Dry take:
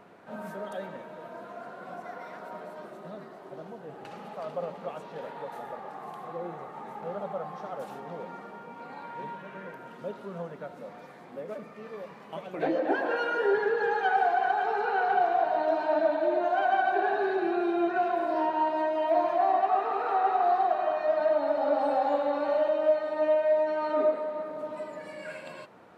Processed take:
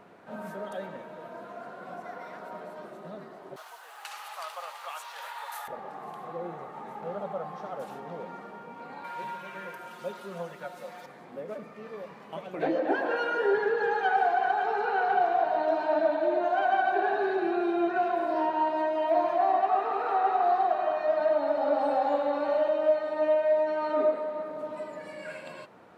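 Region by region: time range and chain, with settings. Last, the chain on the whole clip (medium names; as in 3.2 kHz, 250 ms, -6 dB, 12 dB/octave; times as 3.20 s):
3.56–5.68 s: resonant high-pass 1 kHz, resonance Q 1.7 + tilt EQ +5.5 dB/octave
9.04–11.06 s: tilt EQ +3 dB/octave + comb 5.6 ms, depth 75%
whole clip: none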